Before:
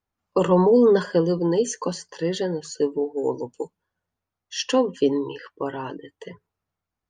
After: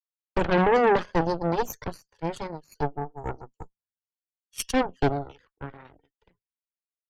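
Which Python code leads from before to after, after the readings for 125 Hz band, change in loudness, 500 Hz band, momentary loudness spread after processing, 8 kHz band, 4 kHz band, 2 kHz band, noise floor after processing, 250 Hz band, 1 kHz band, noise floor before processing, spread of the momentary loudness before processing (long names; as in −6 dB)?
−2.5 dB, −4.0 dB, −6.5 dB, 22 LU, −6.0 dB, −6.5 dB, +5.0 dB, below −85 dBFS, −6.5 dB, +3.0 dB, below −85 dBFS, 17 LU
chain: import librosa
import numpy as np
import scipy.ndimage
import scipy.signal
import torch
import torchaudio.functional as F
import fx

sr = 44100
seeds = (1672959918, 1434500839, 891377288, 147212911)

y = fx.spec_topn(x, sr, count=64)
y = fx.cheby_harmonics(y, sr, harmonics=(4, 7, 8), levels_db=(-7, -22, -17), full_scale_db=-7.5)
y = fx.band_widen(y, sr, depth_pct=70)
y = y * 10.0 ** (-8.5 / 20.0)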